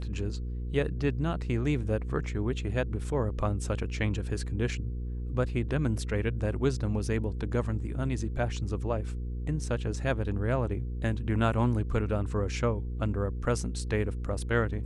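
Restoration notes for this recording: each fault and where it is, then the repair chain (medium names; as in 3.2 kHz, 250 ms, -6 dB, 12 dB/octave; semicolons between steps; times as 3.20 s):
hum 60 Hz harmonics 8 -34 dBFS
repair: de-hum 60 Hz, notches 8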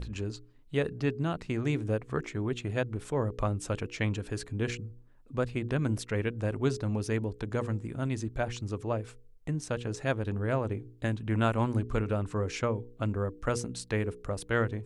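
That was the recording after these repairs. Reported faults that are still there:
nothing left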